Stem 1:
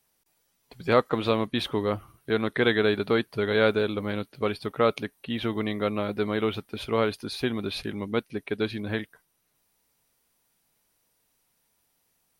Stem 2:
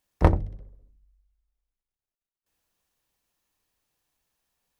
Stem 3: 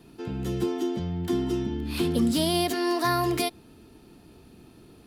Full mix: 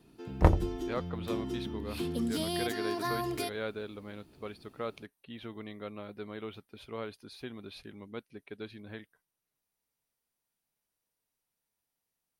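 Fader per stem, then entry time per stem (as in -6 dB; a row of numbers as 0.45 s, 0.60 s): -15.0 dB, -3.5 dB, -9.0 dB; 0.00 s, 0.20 s, 0.00 s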